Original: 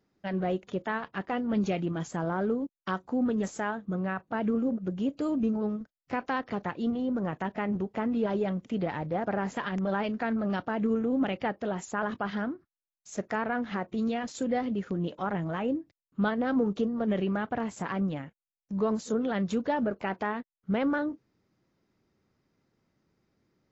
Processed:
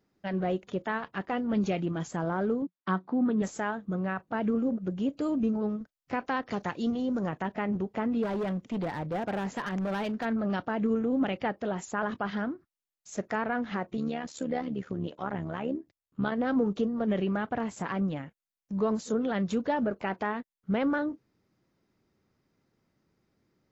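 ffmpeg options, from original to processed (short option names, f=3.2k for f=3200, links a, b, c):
-filter_complex "[0:a]asettb=1/sr,asplit=3[a][b][c];[a]atrim=end=2.624[d];[b]atrim=start=2.62:end=3.42,asetpts=PTS-STARTPTS,afade=t=in:d=0.004:c=qsin,afade=t=out:st=0.796:d=0.004:c=qsin,highpass=150,equalizer=f=180:t=q:w=4:g=8,equalizer=f=330:t=q:w=4:g=4,equalizer=f=510:t=q:w=4:g=-4,equalizer=f=1.1k:t=q:w=4:g=3,equalizer=f=2.8k:t=q:w=4:g=-6,lowpass=f=4.1k:w=0.5412,lowpass=f=4.1k:w=1.3066[e];[c]atrim=start=3.416[f];[d][e]acrossfade=d=0.004:c1=hsin:c2=qsin[g];[g][f]acrossfade=d=0.004:c1=qsin:c2=hsin,asettb=1/sr,asplit=3[h][i][j];[h]atrim=end=6.494[k];[i]atrim=start=6.49:end=7.29,asetpts=PTS-STARTPTS,afade=t=in:d=0.004:c=qsin,afade=t=out:st=0.796:d=0.004:c=qsin,equalizer=f=6.4k:w=0.93:g=11.5[l];[j]atrim=start=7.286[m];[k][l]acrossfade=d=0.004:c1=hsin:c2=qsin[n];[n][m]acrossfade=d=0.004:c1=qsin:c2=hsin,asplit=3[o][p][q];[o]afade=t=out:st=8.22:d=0.02[r];[p]asoftclip=type=hard:threshold=-27.5dB,afade=t=in:st=8.22:d=0.02,afade=t=out:st=10.24:d=0.02[s];[q]afade=t=in:st=10.24:d=0.02[t];[r][s][t]amix=inputs=3:normalize=0,asettb=1/sr,asplit=3[u][v][w];[u]atrim=end=13.974[x];[v]atrim=start=13.97:end=16.32,asetpts=PTS-STARTPTS,afade=t=in:d=0.004:c=qsin,afade=t=out:st=2.346:d=0.004:c=qsin,tremolo=f=72:d=0.667[y];[w]atrim=start=16.316[z];[x][y]acrossfade=d=0.004:c1=hsin:c2=qsin[aa];[aa][z]acrossfade=d=0.004:c1=qsin:c2=hsin"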